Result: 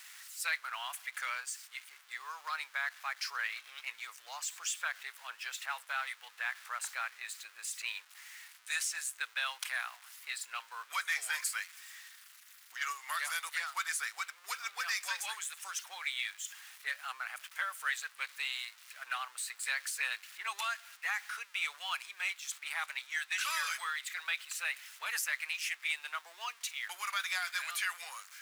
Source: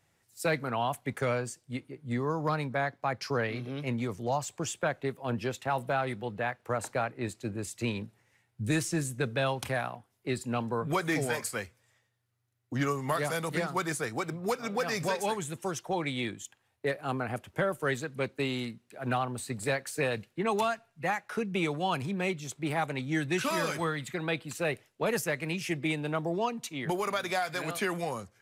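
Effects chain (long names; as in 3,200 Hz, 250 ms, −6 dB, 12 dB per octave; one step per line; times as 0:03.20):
converter with a step at zero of −44 dBFS
high-pass filter 1,300 Hz 24 dB per octave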